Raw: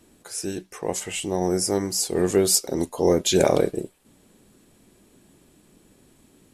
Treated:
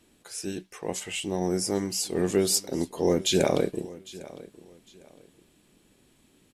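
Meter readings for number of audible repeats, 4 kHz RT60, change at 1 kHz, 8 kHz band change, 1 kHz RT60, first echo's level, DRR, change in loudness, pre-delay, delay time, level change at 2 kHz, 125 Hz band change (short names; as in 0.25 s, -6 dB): 2, none, -5.5 dB, -5.0 dB, none, -19.0 dB, none, -4.0 dB, none, 0.804 s, -2.5 dB, -3.0 dB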